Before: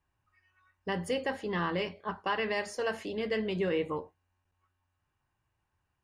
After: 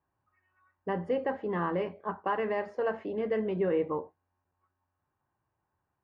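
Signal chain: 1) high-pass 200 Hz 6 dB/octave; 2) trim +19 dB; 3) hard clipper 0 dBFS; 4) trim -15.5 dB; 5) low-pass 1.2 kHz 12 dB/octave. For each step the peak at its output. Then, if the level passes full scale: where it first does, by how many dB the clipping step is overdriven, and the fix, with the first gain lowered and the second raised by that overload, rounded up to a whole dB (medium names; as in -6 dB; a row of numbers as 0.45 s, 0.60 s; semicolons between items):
-20.5 dBFS, -1.5 dBFS, -1.5 dBFS, -17.0 dBFS, -19.0 dBFS; nothing clips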